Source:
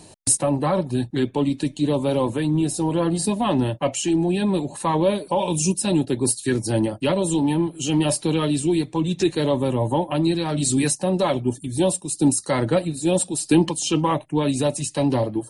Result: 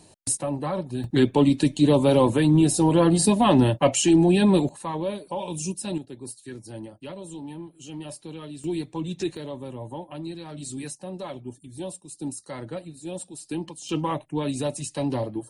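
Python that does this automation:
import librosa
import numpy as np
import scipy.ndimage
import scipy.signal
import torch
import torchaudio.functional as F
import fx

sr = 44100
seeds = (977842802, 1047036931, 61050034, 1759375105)

y = fx.gain(x, sr, db=fx.steps((0.0, -7.0), (1.04, 3.0), (4.69, -9.0), (5.98, -17.0), (8.64, -8.0), (9.37, -14.5), (13.89, -6.0)))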